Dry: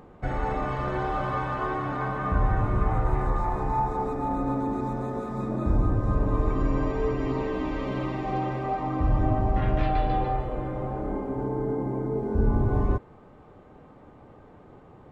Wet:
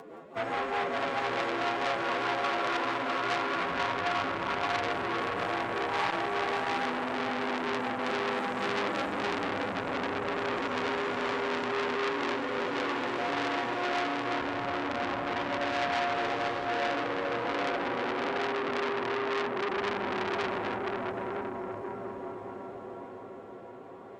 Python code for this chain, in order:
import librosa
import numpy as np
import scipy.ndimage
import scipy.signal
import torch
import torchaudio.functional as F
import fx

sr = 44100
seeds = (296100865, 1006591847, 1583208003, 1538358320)

p1 = fx.tracing_dist(x, sr, depth_ms=0.065)
p2 = scipy.signal.sosfilt(scipy.signal.butter(2, 370.0, 'highpass', fs=sr, output='sos'), p1)
p3 = fx.rotary_switch(p2, sr, hz=7.5, then_hz=0.7, switch_at_s=2.14)
p4 = fx.rider(p3, sr, range_db=4, speed_s=0.5)
p5 = fx.pitch_keep_formants(p4, sr, semitones=-1.5)
p6 = fx.echo_wet_highpass(p5, sr, ms=109, feedback_pct=77, hz=3300.0, wet_db=-11.5)
p7 = fx.stretch_vocoder(p6, sr, factor=1.6)
p8 = fx.fold_sine(p7, sr, drive_db=5, ceiling_db=-18.5)
p9 = p8 + fx.echo_diffused(p8, sr, ms=601, feedback_pct=59, wet_db=-3.0, dry=0)
p10 = fx.transformer_sat(p9, sr, knee_hz=2800.0)
y = p10 * 10.0 ** (-1.5 / 20.0)